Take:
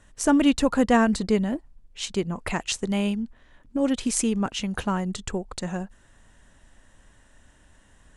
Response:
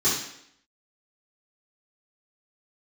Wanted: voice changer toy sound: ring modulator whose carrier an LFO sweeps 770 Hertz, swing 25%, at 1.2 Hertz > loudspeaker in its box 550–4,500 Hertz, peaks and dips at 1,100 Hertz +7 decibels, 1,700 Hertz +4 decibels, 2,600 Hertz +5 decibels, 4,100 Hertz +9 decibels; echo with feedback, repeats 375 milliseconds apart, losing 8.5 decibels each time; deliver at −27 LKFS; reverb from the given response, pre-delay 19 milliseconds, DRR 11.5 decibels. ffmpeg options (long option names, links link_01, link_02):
-filter_complex "[0:a]aecho=1:1:375|750|1125|1500:0.376|0.143|0.0543|0.0206,asplit=2[link_01][link_02];[1:a]atrim=start_sample=2205,adelay=19[link_03];[link_02][link_03]afir=irnorm=-1:irlink=0,volume=-25dB[link_04];[link_01][link_04]amix=inputs=2:normalize=0,aeval=exprs='val(0)*sin(2*PI*770*n/s+770*0.25/1.2*sin(2*PI*1.2*n/s))':channel_layout=same,highpass=550,equalizer=frequency=1100:width_type=q:width=4:gain=7,equalizer=frequency=1700:width_type=q:width=4:gain=4,equalizer=frequency=2600:width_type=q:width=4:gain=5,equalizer=frequency=4100:width_type=q:width=4:gain=9,lowpass=frequency=4500:width=0.5412,lowpass=frequency=4500:width=1.3066,volume=-2.5dB"